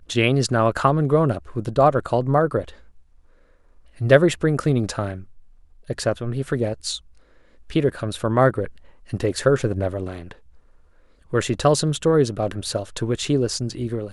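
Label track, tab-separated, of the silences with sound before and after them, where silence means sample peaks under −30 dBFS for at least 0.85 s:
2.690000	4.010000	silence
10.320000	11.330000	silence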